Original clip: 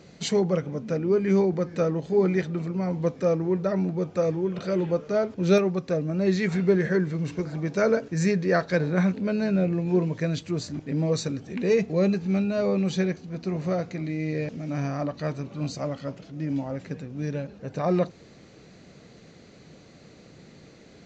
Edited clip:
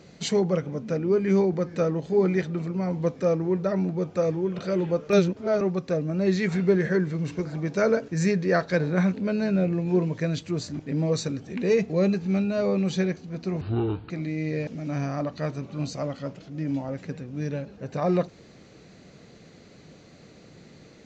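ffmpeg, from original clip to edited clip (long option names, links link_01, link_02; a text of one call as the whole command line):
ffmpeg -i in.wav -filter_complex "[0:a]asplit=5[link_01][link_02][link_03][link_04][link_05];[link_01]atrim=end=5.102[link_06];[link_02]atrim=start=5.098:end=5.612,asetpts=PTS-STARTPTS,areverse[link_07];[link_03]atrim=start=5.608:end=13.614[link_08];[link_04]atrim=start=13.61:end=13.92,asetpts=PTS-STARTPTS,asetrate=27783,aresample=44100[link_09];[link_05]atrim=start=13.916[link_10];[link_06][link_07]acrossfade=duration=0.004:curve1=hsin:curve2=hsin[link_11];[link_11][link_08]acrossfade=duration=0.004:curve1=hsin:curve2=hsin[link_12];[link_12][link_09]acrossfade=duration=0.004:curve1=hsin:curve2=hsin[link_13];[link_13][link_10]acrossfade=duration=0.004:curve1=hsin:curve2=hsin" out.wav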